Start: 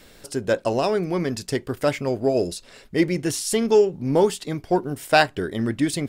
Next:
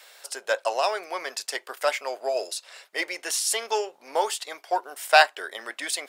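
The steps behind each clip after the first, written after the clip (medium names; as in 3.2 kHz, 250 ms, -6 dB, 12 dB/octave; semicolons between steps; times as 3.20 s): high-pass 650 Hz 24 dB/octave; trim +2 dB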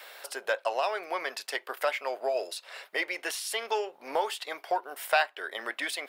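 dynamic bell 2.9 kHz, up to +4 dB, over -37 dBFS, Q 0.75; compression 2:1, threshold -39 dBFS, peak gain reduction 16.5 dB; peaking EQ 7 kHz -11 dB 1.4 oct; trim +6 dB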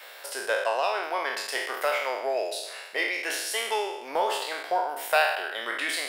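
spectral sustain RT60 0.92 s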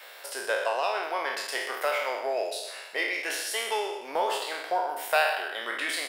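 delay 126 ms -11.5 dB; trim -1.5 dB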